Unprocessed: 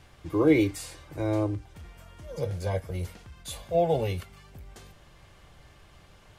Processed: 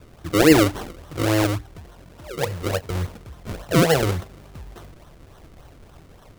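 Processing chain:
0:01.80–0:02.90: low-shelf EQ 160 Hz −7 dB
sample-and-hold swept by an LFO 36×, swing 100% 3.5 Hz
level +7 dB

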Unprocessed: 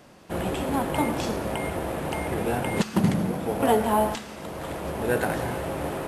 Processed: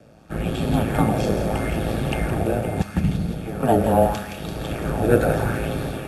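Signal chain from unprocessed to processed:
bass and treble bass +14 dB, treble −1 dB
automatic gain control gain up to 8 dB
ring modulation 55 Hz
frequency shifter −68 Hz
notch comb filter 1,000 Hz
feedback echo with a high-pass in the loop 169 ms, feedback 72%, high-pass 1,100 Hz, level −7.5 dB
auto-filter bell 0.77 Hz 510–4,100 Hz +8 dB
level −1 dB

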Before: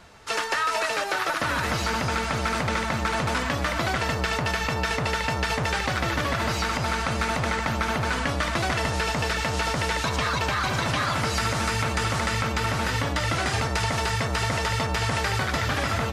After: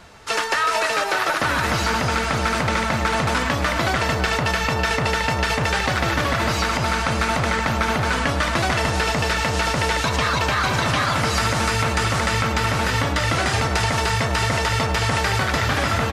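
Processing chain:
far-end echo of a speakerphone 330 ms, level −9 dB
level +4.5 dB

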